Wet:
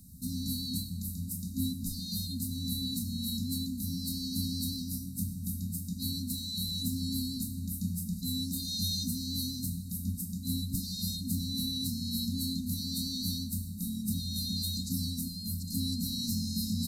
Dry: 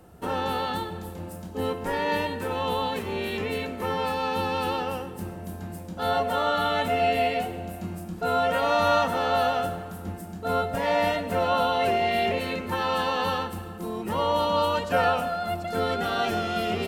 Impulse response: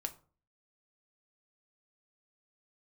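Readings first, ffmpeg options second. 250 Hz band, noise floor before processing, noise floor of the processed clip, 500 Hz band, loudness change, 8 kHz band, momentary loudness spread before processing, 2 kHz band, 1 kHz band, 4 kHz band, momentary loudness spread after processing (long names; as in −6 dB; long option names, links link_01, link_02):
−0.5 dB, −39 dBFS, −41 dBFS, below −40 dB, −7.5 dB, +8.5 dB, 12 LU, below −40 dB, below −40 dB, −1.0 dB, 4 LU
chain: -af "afftfilt=real='re*(1-between(b*sr/4096,270,3700))':imag='im*(1-between(b*sr/4096,270,3700))':win_size=4096:overlap=0.75,crystalizer=i=1.5:c=0,volume=1dB" -ar 32000 -c:a sbc -b:a 192k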